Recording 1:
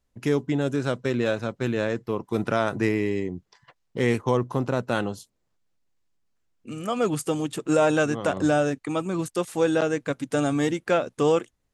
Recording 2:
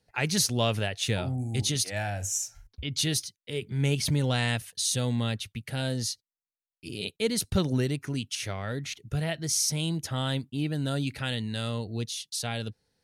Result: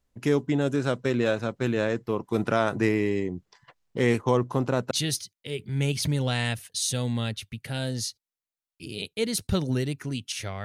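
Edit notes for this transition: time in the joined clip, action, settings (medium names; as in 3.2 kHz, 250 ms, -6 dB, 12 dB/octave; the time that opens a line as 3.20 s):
recording 1
4.91 s: go over to recording 2 from 2.94 s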